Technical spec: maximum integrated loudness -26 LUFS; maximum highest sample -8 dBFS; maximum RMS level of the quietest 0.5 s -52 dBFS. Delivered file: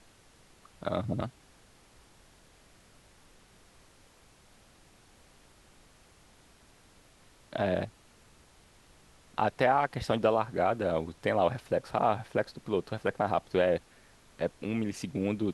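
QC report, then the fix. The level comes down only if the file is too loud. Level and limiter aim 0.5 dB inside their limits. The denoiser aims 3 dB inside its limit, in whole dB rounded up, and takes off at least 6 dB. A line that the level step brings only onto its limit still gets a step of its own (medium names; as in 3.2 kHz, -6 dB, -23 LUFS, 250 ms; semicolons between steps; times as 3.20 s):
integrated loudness -31.0 LUFS: pass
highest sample -11.5 dBFS: pass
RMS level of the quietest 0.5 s -60 dBFS: pass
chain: none needed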